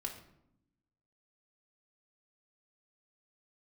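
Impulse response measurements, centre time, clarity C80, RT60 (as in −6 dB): 19 ms, 11.0 dB, 0.75 s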